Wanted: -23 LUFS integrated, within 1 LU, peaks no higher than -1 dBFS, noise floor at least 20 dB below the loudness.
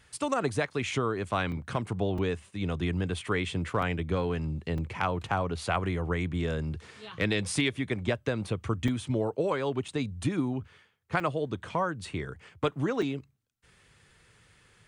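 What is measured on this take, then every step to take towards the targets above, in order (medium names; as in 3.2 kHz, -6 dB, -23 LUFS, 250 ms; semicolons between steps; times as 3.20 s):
dropouts 8; longest dropout 4.0 ms; loudness -31.0 LUFS; peak level -15.5 dBFS; loudness target -23.0 LUFS
-> interpolate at 1.52/2.18/3.82/4.78/8.88/9.88/11.20/13.02 s, 4 ms; trim +8 dB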